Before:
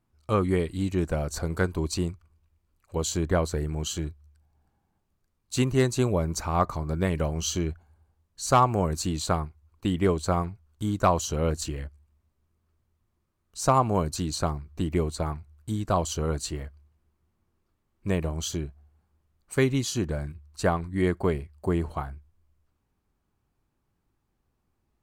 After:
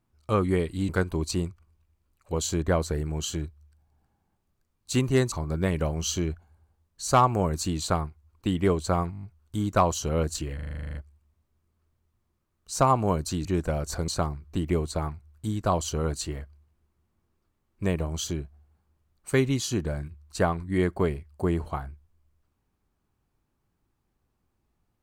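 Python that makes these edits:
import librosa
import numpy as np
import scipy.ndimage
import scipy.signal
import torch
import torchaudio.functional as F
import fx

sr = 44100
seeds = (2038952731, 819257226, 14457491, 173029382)

y = fx.edit(x, sr, fx.move(start_s=0.89, length_s=0.63, to_s=14.32),
    fx.cut(start_s=5.95, length_s=0.76),
    fx.stutter(start_s=10.5, slice_s=0.02, count=7),
    fx.stutter(start_s=11.82, slice_s=0.04, count=11), tone=tone)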